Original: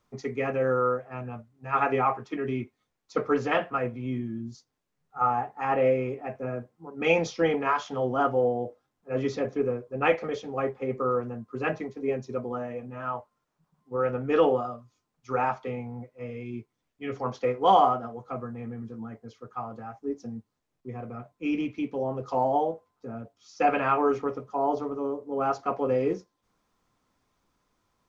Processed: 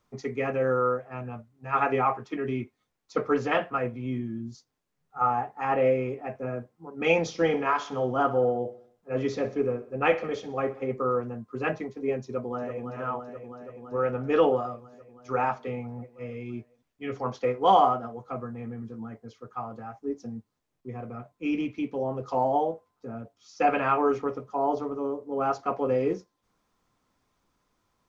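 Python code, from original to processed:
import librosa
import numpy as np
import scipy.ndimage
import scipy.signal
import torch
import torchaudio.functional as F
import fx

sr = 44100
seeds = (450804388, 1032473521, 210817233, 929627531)

y = fx.echo_feedback(x, sr, ms=63, feedback_pct=53, wet_db=-16.0, at=(7.22, 10.92))
y = fx.echo_throw(y, sr, start_s=12.25, length_s=0.61, ms=330, feedback_pct=80, wet_db=-7.5)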